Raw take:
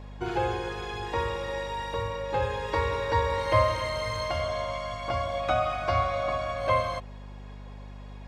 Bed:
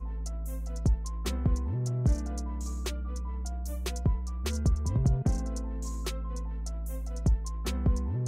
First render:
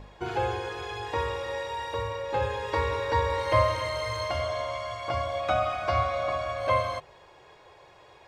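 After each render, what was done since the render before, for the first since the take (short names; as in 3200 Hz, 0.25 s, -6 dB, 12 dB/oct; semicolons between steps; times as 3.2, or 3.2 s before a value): de-hum 50 Hz, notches 7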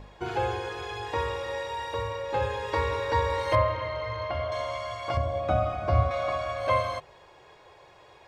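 3.55–4.52 air absorption 300 m; 5.17–6.11 tilt shelf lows +9 dB, about 670 Hz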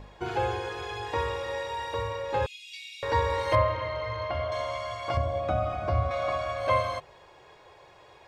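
2.46–3.03 steep high-pass 2300 Hz 96 dB/oct; 5.38–6.22 compressor 1.5:1, threshold -26 dBFS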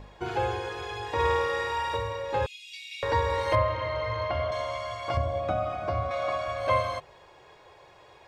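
1.14–1.97 flutter echo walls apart 8.8 m, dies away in 0.93 s; 2.91–4.51 three-band squash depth 40%; 5.52–6.48 HPF 150 Hz 6 dB/oct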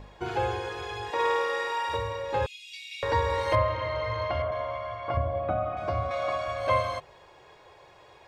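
1.1–1.89 HPF 320 Hz; 4.42–5.77 LPF 2100 Hz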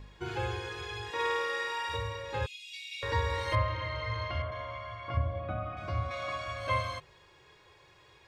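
bell 680 Hz -11 dB 1.2 oct; harmonic-percussive split percussive -6 dB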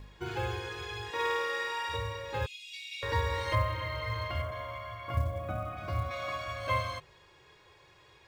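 short-mantissa float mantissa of 4-bit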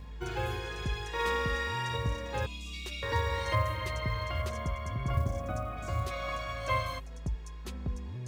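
add bed -9 dB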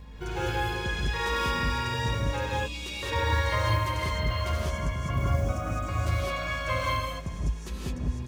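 echo 0.408 s -20.5 dB; non-linear reverb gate 0.23 s rising, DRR -5 dB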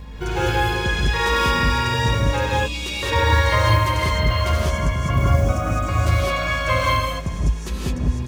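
gain +9 dB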